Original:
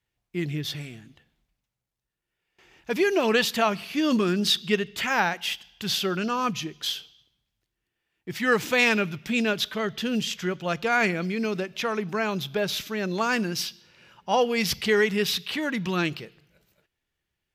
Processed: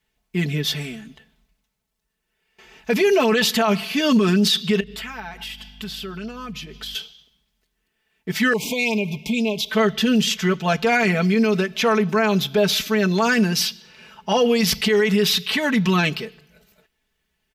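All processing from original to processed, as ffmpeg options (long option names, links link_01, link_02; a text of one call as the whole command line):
ffmpeg -i in.wav -filter_complex "[0:a]asettb=1/sr,asplit=3[link_01][link_02][link_03];[link_01]atrim=end=4.804[link_04];[link_02]atrim=start=4.8:end=6.95,asetpts=PTS-STARTPTS,afade=type=in:duration=0.004:curve=qsin,afade=type=out:start_time=2.146:duration=0.004:curve=qsin,equalizer=frequency=6300:width=6.1:gain=-6.5,acompressor=threshold=-39dB:ratio=8:attack=3.2:release=140:knee=1:detection=peak,aeval=exprs='val(0)+0.00224*(sin(2*PI*50*n/s)+sin(2*PI*2*50*n/s)/2+sin(2*PI*3*50*n/s)/3+sin(2*PI*4*50*n/s)/4+sin(2*PI*5*50*n/s)/5)':channel_layout=same[link_05];[link_03]atrim=start=6.946[link_06];[link_04][link_05]acrossfade=duration=0.004:curve1=hsin:curve2=qsin[link_07];[link_07][link_06]acrossfade=duration=0.004:curve1=qsin:curve2=hsin,asettb=1/sr,asplit=3[link_08][link_09][link_10];[link_08]atrim=end=8.534[link_11];[link_09]atrim=start=8.53:end=9.7,asetpts=PTS-STARTPTS,afade=type=in:duration=0.004:curve=qsin,afade=type=out:start_time=1.166:duration=0.004:curve=qsin,acompressor=threshold=-32dB:ratio=2.5:attack=3.2:release=140:knee=1:detection=peak,asuperstop=centerf=1500:order=20:qfactor=1.4[link_12];[link_10]atrim=start=9.696[link_13];[link_11][link_12]acrossfade=duration=0.004:curve1=hsin:curve2=qsin[link_14];[link_14][link_13]acrossfade=duration=0.004:curve1=qsin:curve2=hsin,aecho=1:1:4.6:0.87,alimiter=limit=-16.5dB:level=0:latency=1:release=14,volume=6.5dB" out.wav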